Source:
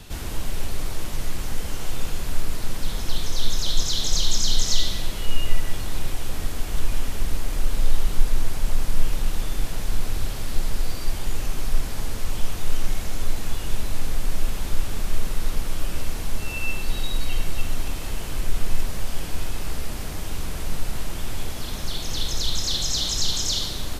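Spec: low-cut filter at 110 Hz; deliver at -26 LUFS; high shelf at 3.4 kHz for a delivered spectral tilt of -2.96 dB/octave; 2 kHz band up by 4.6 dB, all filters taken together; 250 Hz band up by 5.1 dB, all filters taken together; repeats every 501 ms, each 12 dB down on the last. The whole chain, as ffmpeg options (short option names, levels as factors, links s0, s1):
-af "highpass=110,equalizer=f=250:t=o:g=7,equalizer=f=2000:t=o:g=7.5,highshelf=f=3400:g=-4.5,aecho=1:1:501|1002|1503:0.251|0.0628|0.0157,volume=1.68"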